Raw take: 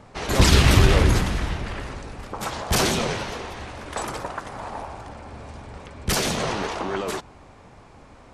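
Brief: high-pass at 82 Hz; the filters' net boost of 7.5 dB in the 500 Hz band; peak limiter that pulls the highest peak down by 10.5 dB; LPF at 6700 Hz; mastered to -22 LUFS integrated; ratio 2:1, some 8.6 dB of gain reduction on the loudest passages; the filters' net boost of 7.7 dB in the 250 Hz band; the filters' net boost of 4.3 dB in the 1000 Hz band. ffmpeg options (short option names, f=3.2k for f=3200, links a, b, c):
-af "highpass=82,lowpass=6.7k,equalizer=f=250:t=o:g=8.5,equalizer=f=500:t=o:g=6,equalizer=f=1k:t=o:g=3,acompressor=threshold=-25dB:ratio=2,volume=8.5dB,alimiter=limit=-11.5dB:level=0:latency=1"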